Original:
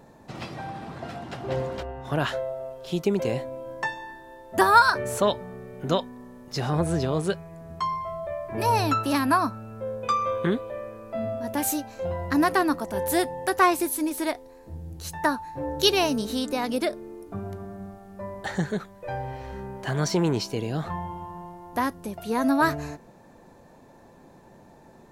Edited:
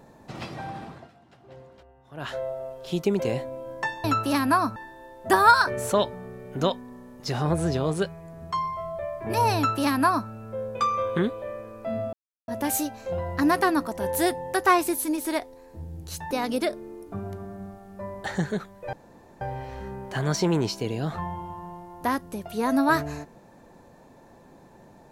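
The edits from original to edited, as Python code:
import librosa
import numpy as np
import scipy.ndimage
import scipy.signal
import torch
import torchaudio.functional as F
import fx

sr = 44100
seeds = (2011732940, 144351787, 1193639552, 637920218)

y = fx.edit(x, sr, fx.fade_down_up(start_s=0.79, length_s=1.66, db=-19.0, fade_s=0.31),
    fx.duplicate(start_s=8.84, length_s=0.72, to_s=4.04),
    fx.insert_silence(at_s=11.41, length_s=0.35),
    fx.cut(start_s=15.24, length_s=1.27),
    fx.insert_room_tone(at_s=19.13, length_s=0.48), tone=tone)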